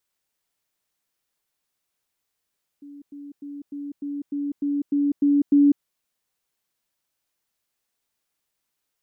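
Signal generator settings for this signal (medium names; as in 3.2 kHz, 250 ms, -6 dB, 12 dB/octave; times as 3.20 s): level ladder 286 Hz -39 dBFS, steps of 3 dB, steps 10, 0.20 s 0.10 s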